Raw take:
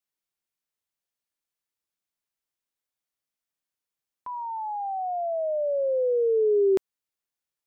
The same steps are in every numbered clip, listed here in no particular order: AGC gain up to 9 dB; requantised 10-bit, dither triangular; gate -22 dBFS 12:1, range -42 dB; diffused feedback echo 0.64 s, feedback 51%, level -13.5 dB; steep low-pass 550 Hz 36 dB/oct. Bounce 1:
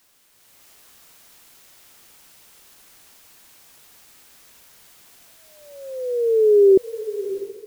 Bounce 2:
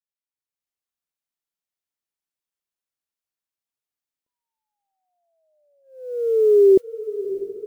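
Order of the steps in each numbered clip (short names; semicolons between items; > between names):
gate > steep low-pass > requantised > diffused feedback echo > AGC; steep low-pass > requantised > gate > AGC > diffused feedback echo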